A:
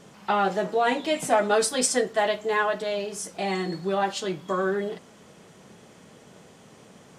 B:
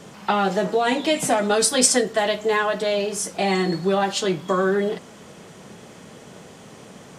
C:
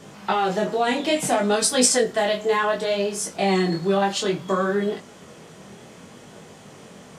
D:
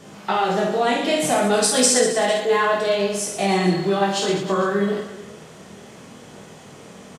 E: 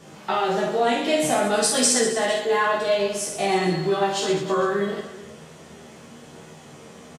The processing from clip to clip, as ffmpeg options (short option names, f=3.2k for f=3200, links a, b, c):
-filter_complex "[0:a]acrossover=split=280|3000[a][b][c];[b]acompressor=threshold=-26dB:ratio=6[d];[a][d][c]amix=inputs=3:normalize=0,volume=7.5dB"
-af "flanger=delay=19:depth=6.3:speed=0.62,volume=2dB"
-af "aecho=1:1:50|115|199.5|309.4|452.2:0.631|0.398|0.251|0.158|0.1"
-filter_complex "[0:a]asplit=2[a][b];[b]adelay=13,volume=-4dB[c];[a][c]amix=inputs=2:normalize=0,volume=-3.5dB"